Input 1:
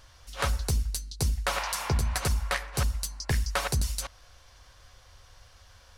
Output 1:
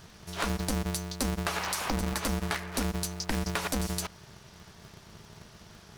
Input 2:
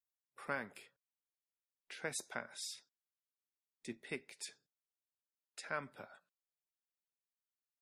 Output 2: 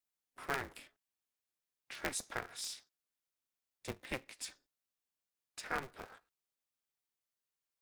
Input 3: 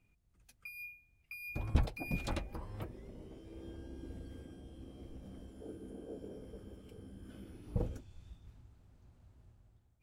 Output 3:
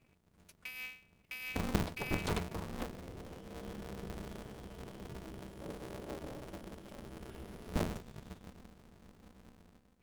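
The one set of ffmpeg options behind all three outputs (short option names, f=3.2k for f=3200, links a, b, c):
-af "acompressor=threshold=-30dB:ratio=6,aeval=exprs='val(0)*sgn(sin(2*PI*130*n/s))':c=same,volume=2.5dB"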